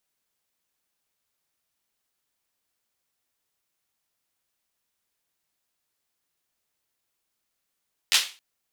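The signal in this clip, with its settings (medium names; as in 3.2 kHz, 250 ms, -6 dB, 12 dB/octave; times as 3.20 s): hand clap length 0.27 s, bursts 3, apart 11 ms, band 3.3 kHz, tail 0.33 s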